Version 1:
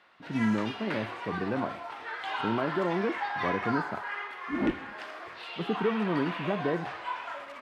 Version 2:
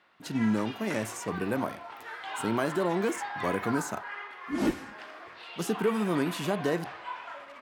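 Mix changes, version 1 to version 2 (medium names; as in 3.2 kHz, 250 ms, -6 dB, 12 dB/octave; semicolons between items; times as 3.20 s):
speech: remove distance through air 490 m; background -3.5 dB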